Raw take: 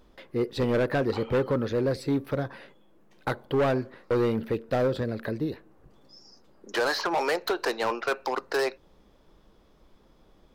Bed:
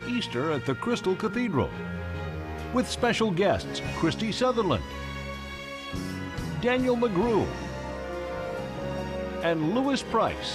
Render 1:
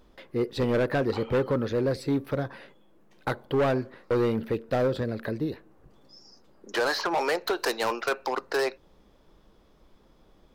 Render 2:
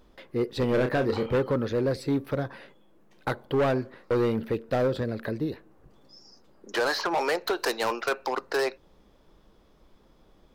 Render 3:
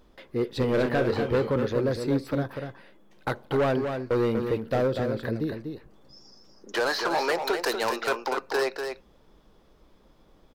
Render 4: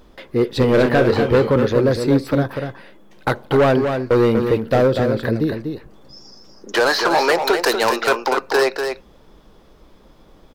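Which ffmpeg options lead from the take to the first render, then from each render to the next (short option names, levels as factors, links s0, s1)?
-filter_complex "[0:a]asettb=1/sr,asplit=3[s0][s1][s2];[s0]atrim=end=7.534[s3];[s1]atrim=start=7.53:end=8.09,asetpts=PTS-STARTPTS,afade=t=in:d=0.004:c=qsin,afade=t=out:st=0.556:d=0.004:c=qsin,aemphasis=mode=production:type=cd[s4];[s2]atrim=start=8.086[s5];[s3][s4]acrossfade=d=0.004:c1=hsin:c2=qsin[s6];[s6][s5]acrossfade=d=0.004:c1=qsin:c2=hsin"
-filter_complex "[0:a]asettb=1/sr,asplit=3[s0][s1][s2];[s0]atrim=end=0.694[s3];[s1]atrim=start=0.69:end=1.36,asetpts=PTS-STARTPTS,afade=t=in:d=0.004:c=qsin,afade=t=out:st=0.666:d=0.004:c=qsin,asplit=2[s4][s5];[s5]adelay=31,volume=0.447[s6];[s4][s6]amix=inputs=2:normalize=0,atrim=end_sample=29547[s7];[s2]atrim=start=1.356[s8];[s3][s7]acrossfade=d=0.004:c1=hsin:c2=qsin[s9];[s9][s8]acrossfade=d=0.004:c1=qsin:c2=hsin"
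-af "aecho=1:1:243:0.473"
-af "volume=2.99"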